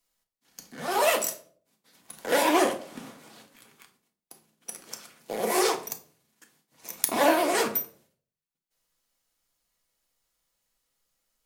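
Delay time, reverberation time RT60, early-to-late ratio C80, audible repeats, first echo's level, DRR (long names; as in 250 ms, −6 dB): no echo audible, 0.50 s, 17.5 dB, no echo audible, no echo audible, 4.0 dB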